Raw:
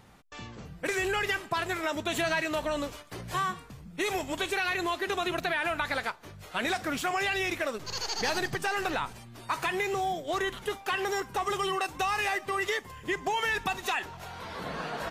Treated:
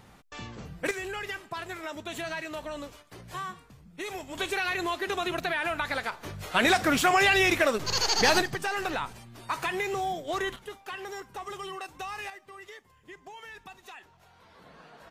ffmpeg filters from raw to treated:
ffmpeg -i in.wav -af "asetnsamples=nb_out_samples=441:pad=0,asendcmd='0.91 volume volume -6.5dB;4.35 volume volume 0dB;6.12 volume volume 7.5dB;8.42 volume volume -0.5dB;10.56 volume volume -8.5dB;12.3 volume volume -16.5dB',volume=2dB" out.wav

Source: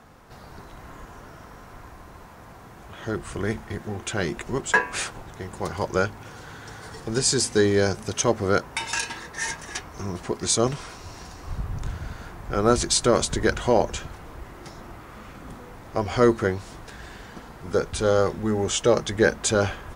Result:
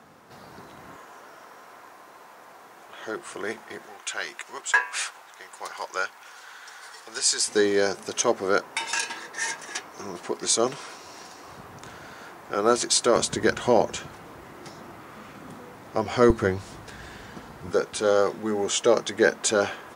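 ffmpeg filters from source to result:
ffmpeg -i in.wav -af "asetnsamples=nb_out_samples=441:pad=0,asendcmd='0.96 highpass f 430;3.86 highpass f 940;7.48 highpass f 310;13.16 highpass f 150;16.3 highpass f 71;17.71 highpass f 260',highpass=160" out.wav

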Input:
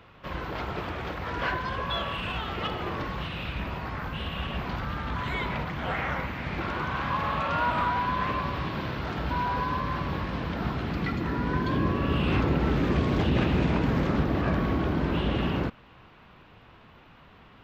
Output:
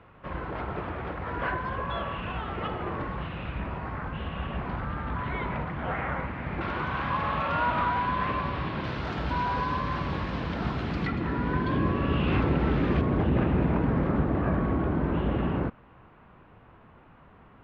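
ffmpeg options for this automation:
ffmpeg -i in.wav -af "asetnsamples=nb_out_samples=441:pad=0,asendcmd='6.61 lowpass f 3500;8.84 lowpass f 7500;11.07 lowpass f 3200;13.01 lowpass f 1600',lowpass=1900" out.wav

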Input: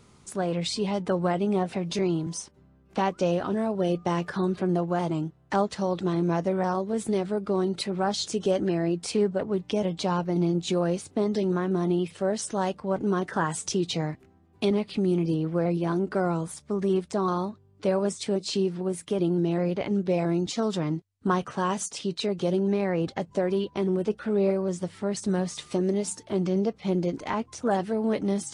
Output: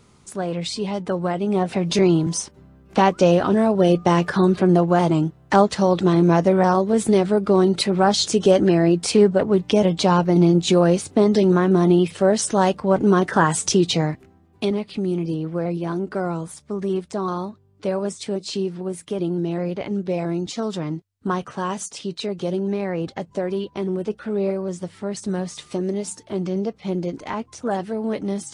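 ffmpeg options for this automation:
ffmpeg -i in.wav -af "volume=9.5dB,afade=type=in:start_time=1.4:duration=0.59:silence=0.421697,afade=type=out:start_time=13.75:duration=1.02:silence=0.375837" out.wav

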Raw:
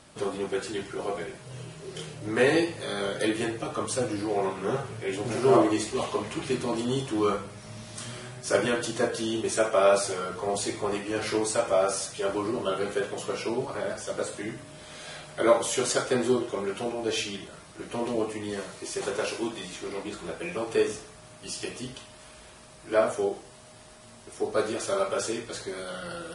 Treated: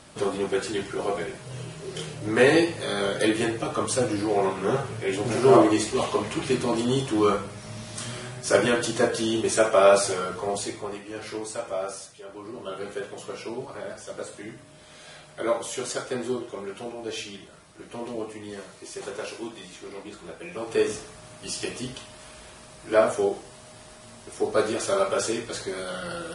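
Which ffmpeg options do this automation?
ffmpeg -i in.wav -af "volume=22dB,afade=type=out:start_time=10.12:duration=0.84:silence=0.298538,afade=type=out:start_time=11.89:duration=0.37:silence=0.398107,afade=type=in:start_time=12.26:duration=0.62:silence=0.316228,afade=type=in:start_time=20.5:duration=0.47:silence=0.398107" out.wav

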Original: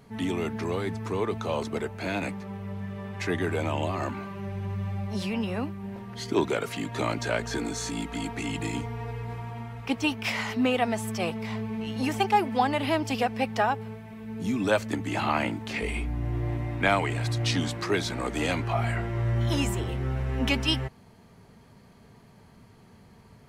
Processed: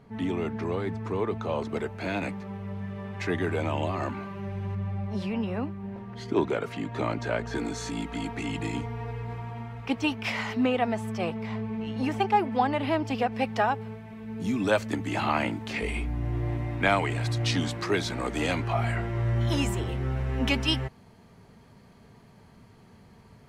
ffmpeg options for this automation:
ffmpeg -i in.wav -af "asetnsamples=nb_out_samples=441:pad=0,asendcmd='1.69 lowpass f 4500;4.75 lowpass f 1800;7.55 lowpass f 4100;10.66 lowpass f 2200;13.32 lowpass f 5100;14.4 lowpass f 9300',lowpass=frequency=2000:poles=1" out.wav

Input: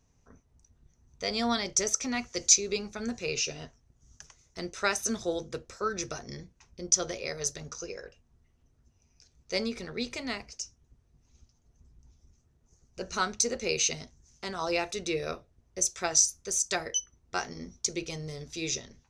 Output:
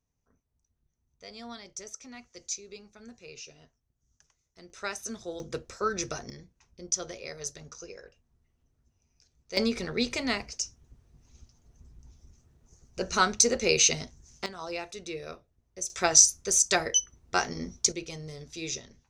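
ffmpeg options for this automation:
ffmpeg -i in.wav -af "asetnsamples=nb_out_samples=441:pad=0,asendcmd='4.7 volume volume -7dB;5.4 volume volume 2dB;6.3 volume volume -5dB;9.57 volume volume 5.5dB;14.46 volume volume -6.5dB;15.9 volume volume 5.5dB;17.92 volume volume -2.5dB',volume=-14.5dB" out.wav

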